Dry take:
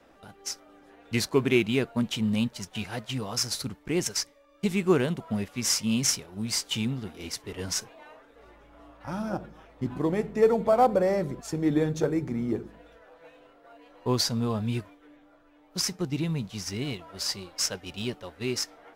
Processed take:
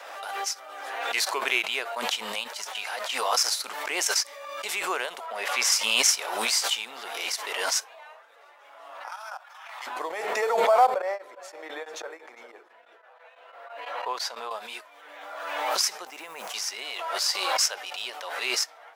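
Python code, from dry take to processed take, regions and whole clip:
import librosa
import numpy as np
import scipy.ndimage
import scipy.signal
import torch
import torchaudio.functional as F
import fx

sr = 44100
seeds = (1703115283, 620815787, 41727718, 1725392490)

y = fx.chain(x, sr, fx.highpass(hz=230.0, slope=12),
    fx.high_shelf(hz=3900.0, db=-8.0), at=(5.26, 5.72))
y = fx.chain(y, sr, fx.highpass(hz=850.0, slope=24),
    fx.level_steps(step_db=10), at=(9.08, 9.87))
y = fx.chain(y, sr, fx.bass_treble(bass_db=-10, treble_db=-9),
    fx.echo_single(ms=404, db=-18.5),
    fx.tremolo_abs(hz=6.0), at=(10.94, 14.51))
y = fx.chain(y, sr, fx.law_mismatch(coded='A'),
    fx.peak_eq(hz=3900.0, db=-12.5, octaves=0.77), at=(16.07, 16.54))
y = scipy.signal.sosfilt(scipy.signal.butter(4, 650.0, 'highpass', fs=sr, output='sos'), y)
y = fx.pre_swell(y, sr, db_per_s=34.0)
y = F.gain(torch.from_numpy(y), 3.5).numpy()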